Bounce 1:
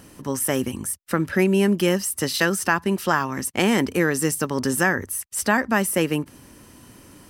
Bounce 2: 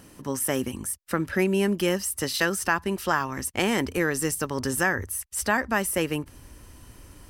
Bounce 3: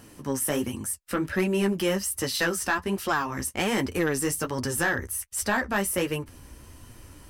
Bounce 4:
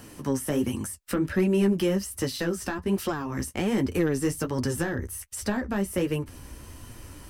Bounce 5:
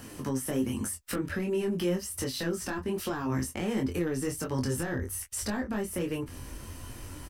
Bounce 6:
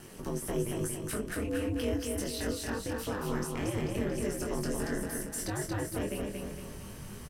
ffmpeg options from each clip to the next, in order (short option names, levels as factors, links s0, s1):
-af "asubboost=boost=8:cutoff=65,volume=0.708"
-af "flanger=delay=8.4:depth=7:regen=-24:speed=1.3:shape=sinusoidal,asoftclip=type=tanh:threshold=0.1,volume=1.58"
-filter_complex "[0:a]acrossover=split=6200[s0][s1];[s1]alimiter=level_in=1.68:limit=0.0631:level=0:latency=1:release=37,volume=0.596[s2];[s0][s2]amix=inputs=2:normalize=0,acrossover=split=460[s3][s4];[s4]acompressor=threshold=0.0141:ratio=6[s5];[s3][s5]amix=inputs=2:normalize=0,volume=1.5"
-filter_complex "[0:a]alimiter=limit=0.0708:level=0:latency=1:release=197,asplit=2[s0][s1];[s1]adelay=23,volume=0.596[s2];[s0][s2]amix=inputs=2:normalize=0"
-af "aeval=exprs='val(0)*sin(2*PI*110*n/s)':c=same,aecho=1:1:230|460|690|920|1150|1380:0.668|0.321|0.154|0.0739|0.0355|0.017,volume=0.891"